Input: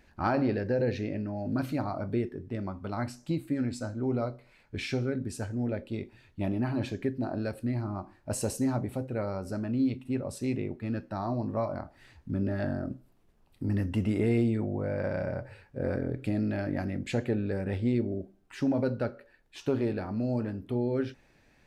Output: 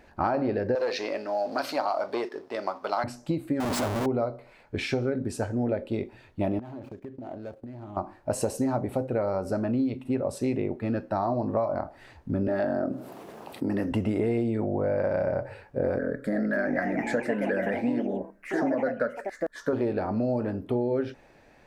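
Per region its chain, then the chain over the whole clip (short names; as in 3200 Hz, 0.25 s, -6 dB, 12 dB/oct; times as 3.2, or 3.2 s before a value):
0.75–3.04 sample leveller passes 1 + HPF 620 Hz + bell 4900 Hz +11.5 dB 0.82 oct
3.6–4.06 high shelf 3400 Hz +10.5 dB + Schmitt trigger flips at -40.5 dBFS
6.59–7.97 median filter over 25 samples + gate -41 dBFS, range -14 dB + compressor 20:1, threshold -42 dBFS
12.48–13.92 HPF 200 Hz + fast leveller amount 50%
15.99–19.73 bell 1700 Hz +13.5 dB 0.49 oct + fixed phaser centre 530 Hz, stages 8 + echoes that change speed 0.33 s, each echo +3 st, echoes 3, each echo -6 dB
whole clip: bell 660 Hz +10 dB 2.2 oct; compressor, threshold -25 dBFS; gain +2 dB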